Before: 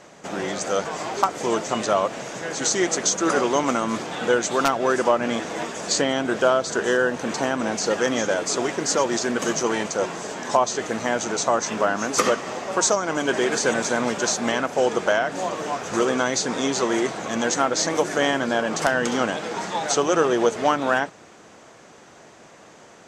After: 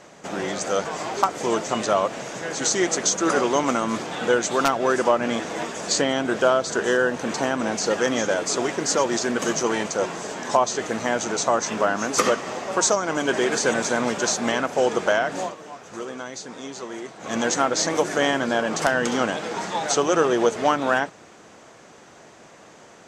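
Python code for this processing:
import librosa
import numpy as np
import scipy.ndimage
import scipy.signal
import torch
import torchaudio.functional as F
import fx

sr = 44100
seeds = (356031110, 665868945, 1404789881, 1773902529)

y = fx.edit(x, sr, fx.fade_down_up(start_s=15.41, length_s=1.92, db=-12.0, fade_s=0.14), tone=tone)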